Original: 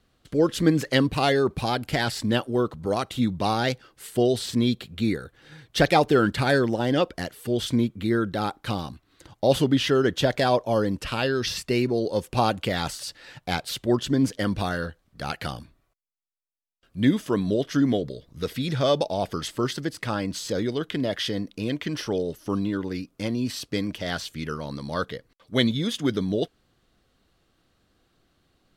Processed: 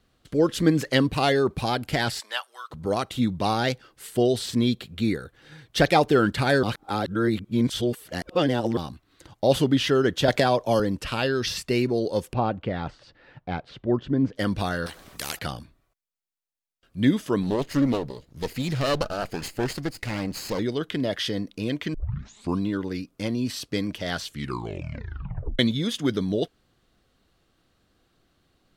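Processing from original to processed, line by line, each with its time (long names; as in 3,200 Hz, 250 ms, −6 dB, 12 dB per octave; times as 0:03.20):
0:02.19–0:02.70: high-pass filter 640 Hz → 1,400 Hz 24 dB per octave
0:06.63–0:08.77: reverse
0:10.28–0:10.80: multiband upward and downward compressor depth 100%
0:12.33–0:14.36: head-to-tape spacing loss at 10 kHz 40 dB
0:14.86–0:15.39: every bin compressed towards the loudest bin 4 to 1
0:17.43–0:20.59: lower of the sound and its delayed copy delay 0.44 ms
0:21.94: tape start 0.65 s
0:24.29: tape stop 1.30 s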